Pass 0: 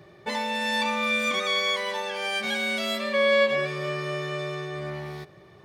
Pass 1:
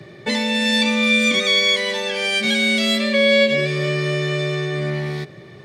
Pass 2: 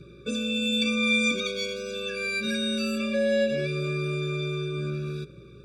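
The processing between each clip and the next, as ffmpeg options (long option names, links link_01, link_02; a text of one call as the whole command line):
ffmpeg -i in.wav -filter_complex "[0:a]equalizer=frequency=125:width_type=o:width=1:gain=11,equalizer=frequency=250:width_type=o:width=1:gain=11,equalizer=frequency=500:width_type=o:width=1:gain=7,equalizer=frequency=2000:width_type=o:width=1:gain=10,equalizer=frequency=4000:width_type=o:width=1:gain=8,equalizer=frequency=8000:width_type=o:width=1:gain=9,acrossover=split=270|560|2200[link_01][link_02][link_03][link_04];[link_03]acompressor=threshold=-30dB:ratio=6[link_05];[link_01][link_02][link_05][link_04]amix=inputs=4:normalize=0" out.wav
ffmpeg -i in.wav -af "aeval=exprs='val(0)+0.00398*(sin(2*PI*60*n/s)+sin(2*PI*2*60*n/s)/2+sin(2*PI*3*60*n/s)/3+sin(2*PI*4*60*n/s)/4+sin(2*PI*5*60*n/s)/5)':channel_layout=same,afftfilt=real='re*eq(mod(floor(b*sr/1024/560),2),0)':imag='im*eq(mod(floor(b*sr/1024/560),2),0)':win_size=1024:overlap=0.75,volume=-6.5dB" out.wav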